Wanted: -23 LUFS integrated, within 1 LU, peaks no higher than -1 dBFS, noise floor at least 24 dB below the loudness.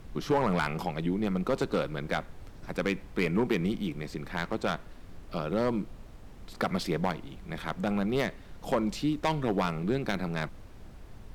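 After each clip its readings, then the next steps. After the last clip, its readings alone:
clipped samples 0.5%; clipping level -19.0 dBFS; noise floor -48 dBFS; noise floor target -55 dBFS; loudness -31.0 LUFS; peak level -19.0 dBFS; loudness target -23.0 LUFS
-> clip repair -19 dBFS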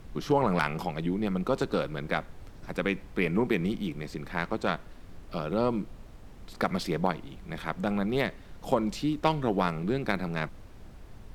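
clipped samples 0.0%; noise floor -48 dBFS; noise floor target -54 dBFS
-> noise print and reduce 6 dB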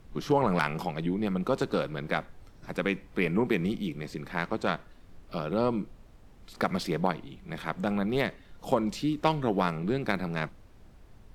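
noise floor -54 dBFS; loudness -30.0 LUFS; peak level -10.0 dBFS; loudness target -23.0 LUFS
-> trim +7 dB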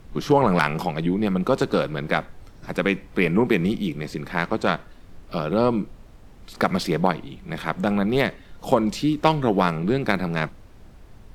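loudness -23.0 LUFS; peak level -3.0 dBFS; noise floor -47 dBFS

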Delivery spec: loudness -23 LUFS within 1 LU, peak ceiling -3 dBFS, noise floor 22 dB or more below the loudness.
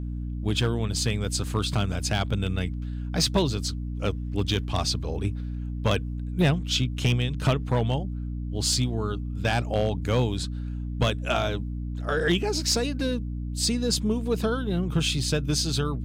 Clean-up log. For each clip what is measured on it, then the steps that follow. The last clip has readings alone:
clipped samples 0.4%; clipping level -15.0 dBFS; hum 60 Hz; highest harmonic 300 Hz; hum level -29 dBFS; loudness -26.5 LUFS; peak level -15.0 dBFS; loudness target -23.0 LUFS
-> clip repair -15 dBFS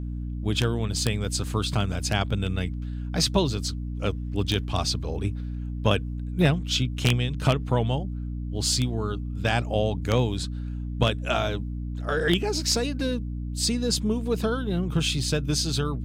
clipped samples 0.0%; hum 60 Hz; highest harmonic 300 Hz; hum level -28 dBFS
-> hum notches 60/120/180/240/300 Hz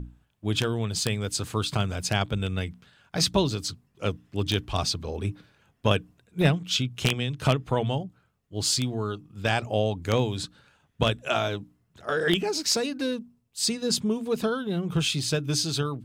hum not found; loudness -27.0 LUFS; peak level -5.5 dBFS; loudness target -23.0 LUFS
-> trim +4 dB; peak limiter -3 dBFS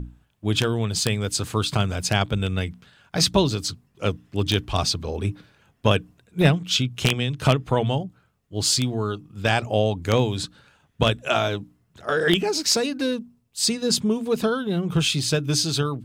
loudness -23.0 LUFS; peak level -3.0 dBFS; noise floor -66 dBFS

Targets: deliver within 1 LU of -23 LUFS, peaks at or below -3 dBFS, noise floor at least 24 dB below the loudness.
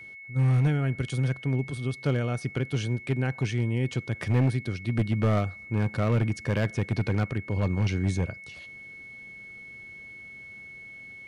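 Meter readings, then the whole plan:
clipped samples 1.5%; clipping level -18.0 dBFS; steady tone 2.2 kHz; tone level -42 dBFS; loudness -27.5 LUFS; peak level -18.0 dBFS; loudness target -23.0 LUFS
-> clip repair -18 dBFS; band-stop 2.2 kHz, Q 30; trim +4.5 dB

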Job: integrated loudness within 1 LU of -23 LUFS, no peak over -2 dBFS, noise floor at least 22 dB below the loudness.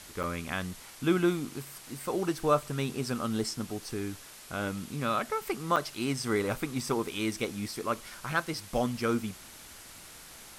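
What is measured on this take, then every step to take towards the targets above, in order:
dropouts 2; longest dropout 6.3 ms; noise floor -49 dBFS; noise floor target -54 dBFS; loudness -32.0 LUFS; peak level -12.5 dBFS; loudness target -23.0 LUFS
-> interpolate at 0.23/5.76 s, 6.3 ms; noise reduction 6 dB, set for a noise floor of -49 dBFS; trim +9 dB

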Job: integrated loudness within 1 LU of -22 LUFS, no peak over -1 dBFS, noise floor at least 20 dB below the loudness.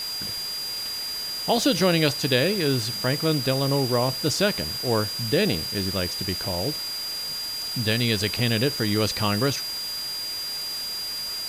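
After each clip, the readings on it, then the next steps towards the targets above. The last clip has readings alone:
steady tone 4.8 kHz; tone level -29 dBFS; noise floor -31 dBFS; noise floor target -44 dBFS; loudness -24.0 LUFS; peak level -8.5 dBFS; loudness target -22.0 LUFS
-> band-stop 4.8 kHz, Q 30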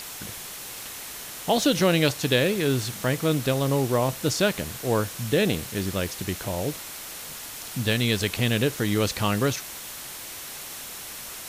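steady tone not found; noise floor -38 dBFS; noise floor target -46 dBFS
-> noise print and reduce 8 dB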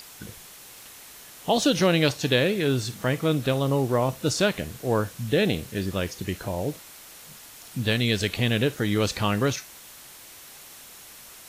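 noise floor -46 dBFS; loudness -25.0 LUFS; peak level -8.5 dBFS; loudness target -22.0 LUFS
-> trim +3 dB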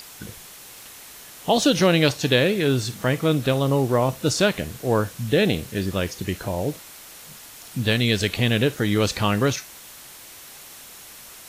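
loudness -22.0 LUFS; peak level -5.5 dBFS; noise floor -43 dBFS

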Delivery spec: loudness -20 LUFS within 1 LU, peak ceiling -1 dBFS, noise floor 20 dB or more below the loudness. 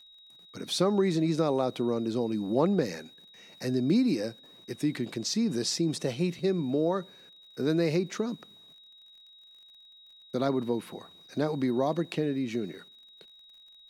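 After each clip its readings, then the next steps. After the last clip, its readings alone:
tick rate 42 per s; steady tone 3.8 kHz; tone level -52 dBFS; loudness -29.5 LUFS; peak level -13.0 dBFS; loudness target -20.0 LUFS
-> de-click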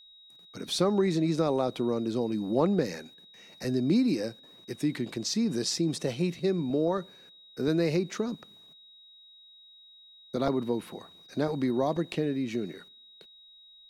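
tick rate 0.36 per s; steady tone 3.8 kHz; tone level -52 dBFS
-> band-stop 3.8 kHz, Q 30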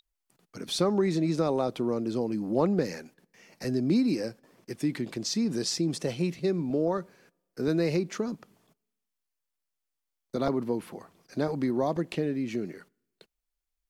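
steady tone not found; loudness -29.5 LUFS; peak level -13.0 dBFS; loudness target -20.0 LUFS
-> trim +9.5 dB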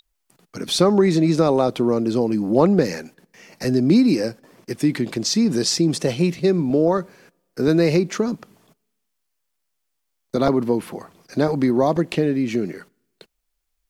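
loudness -20.0 LUFS; peak level -3.5 dBFS; noise floor -75 dBFS

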